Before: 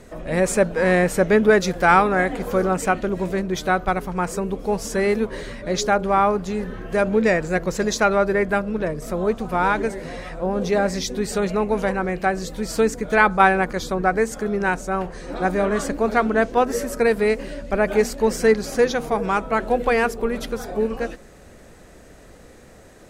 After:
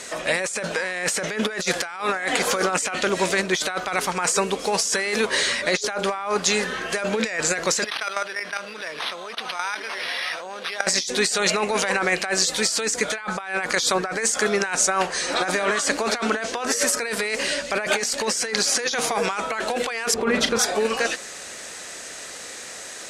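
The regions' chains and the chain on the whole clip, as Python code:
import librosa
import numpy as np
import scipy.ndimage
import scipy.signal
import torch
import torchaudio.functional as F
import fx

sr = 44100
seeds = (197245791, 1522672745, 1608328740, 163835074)

y = fx.chain(x, sr, fx.tilt_eq(slope=4.0),
    fx.level_steps(step_db=20),
    fx.resample_linear(factor=6), at=(7.84, 10.87))
y = fx.chain(y, sr, fx.highpass(hz=69.0, slope=12),
    fx.riaa(side='playback'),
    fx.doubler(ms=36.0, db=-10.5), at=(20.14, 20.59))
y = fx.weighting(y, sr, curve='ITU-R 468')
y = fx.over_compress(y, sr, threshold_db=-28.0, ratio=-1.0)
y = y * 10.0 ** (4.0 / 20.0)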